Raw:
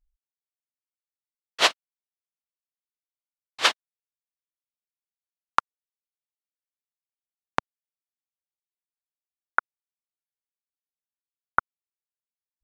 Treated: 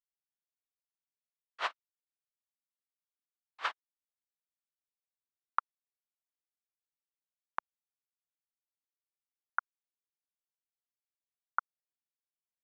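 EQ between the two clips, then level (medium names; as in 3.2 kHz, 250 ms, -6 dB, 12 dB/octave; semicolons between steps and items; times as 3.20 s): band-pass filter 1.2 kHz, Q 1.5; -9.0 dB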